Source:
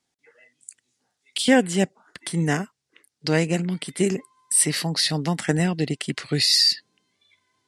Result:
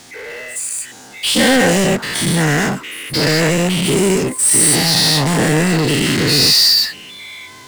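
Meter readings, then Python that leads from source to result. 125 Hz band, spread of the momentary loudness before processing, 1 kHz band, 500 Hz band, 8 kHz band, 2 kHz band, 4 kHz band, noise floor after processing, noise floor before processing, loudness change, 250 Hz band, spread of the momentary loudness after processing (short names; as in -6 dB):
+8.5 dB, 12 LU, +10.5 dB, +9.0 dB, +11.0 dB, +11.5 dB, +10.0 dB, -38 dBFS, -79 dBFS, +9.0 dB, +8.0 dB, 16 LU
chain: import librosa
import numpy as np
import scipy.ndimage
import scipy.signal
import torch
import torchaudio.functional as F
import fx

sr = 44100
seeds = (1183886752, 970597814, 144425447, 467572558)

y = fx.spec_dilate(x, sr, span_ms=240)
y = fx.power_curve(y, sr, exponent=0.5)
y = F.gain(torch.from_numpy(y), -5.0).numpy()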